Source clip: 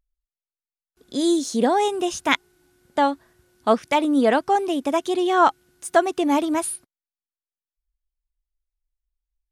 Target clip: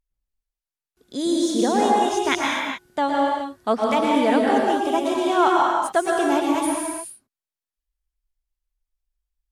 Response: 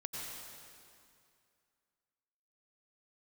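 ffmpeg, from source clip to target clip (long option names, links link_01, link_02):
-filter_complex "[1:a]atrim=start_sample=2205,afade=type=out:start_time=0.41:duration=0.01,atrim=end_sample=18522,asetrate=37044,aresample=44100[link_01];[0:a][link_01]afir=irnorm=-1:irlink=0"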